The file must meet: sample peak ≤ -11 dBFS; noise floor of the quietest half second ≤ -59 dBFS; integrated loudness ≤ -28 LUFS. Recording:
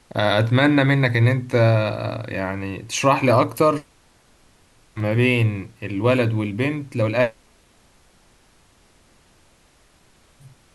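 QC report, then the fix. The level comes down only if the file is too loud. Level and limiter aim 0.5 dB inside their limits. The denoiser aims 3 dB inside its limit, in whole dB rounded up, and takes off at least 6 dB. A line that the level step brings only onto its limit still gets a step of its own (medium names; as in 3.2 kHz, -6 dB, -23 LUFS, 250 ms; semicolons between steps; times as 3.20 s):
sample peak -5.5 dBFS: fail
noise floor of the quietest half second -56 dBFS: fail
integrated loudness -20.0 LUFS: fail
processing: trim -8.5 dB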